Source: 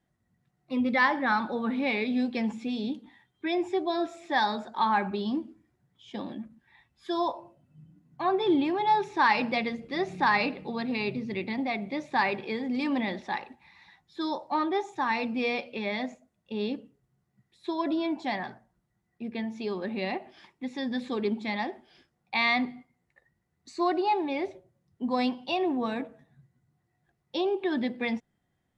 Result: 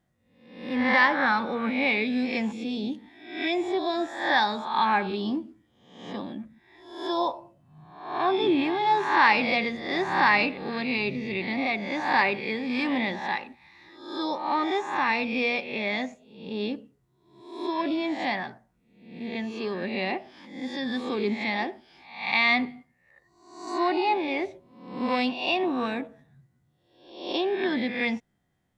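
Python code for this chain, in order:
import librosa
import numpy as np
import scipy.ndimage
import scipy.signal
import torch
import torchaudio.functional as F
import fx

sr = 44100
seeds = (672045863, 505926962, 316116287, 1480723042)

y = fx.spec_swells(x, sr, rise_s=0.69)
y = fx.dynamic_eq(y, sr, hz=2500.0, q=1.5, threshold_db=-41.0, ratio=4.0, max_db=4)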